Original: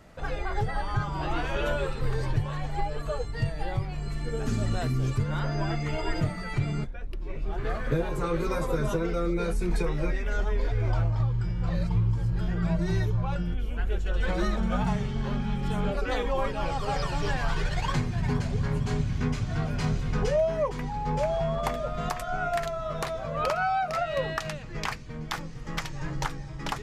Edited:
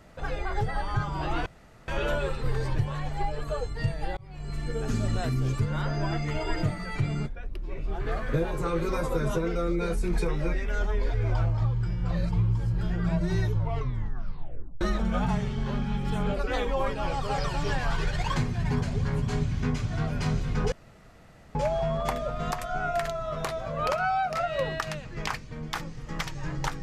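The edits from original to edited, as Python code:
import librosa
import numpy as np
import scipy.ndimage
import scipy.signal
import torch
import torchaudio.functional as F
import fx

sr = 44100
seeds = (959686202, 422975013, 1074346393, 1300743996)

y = fx.edit(x, sr, fx.insert_room_tone(at_s=1.46, length_s=0.42),
    fx.fade_in_span(start_s=3.75, length_s=0.41),
    fx.tape_stop(start_s=13.1, length_s=1.29),
    fx.room_tone_fill(start_s=20.3, length_s=0.83), tone=tone)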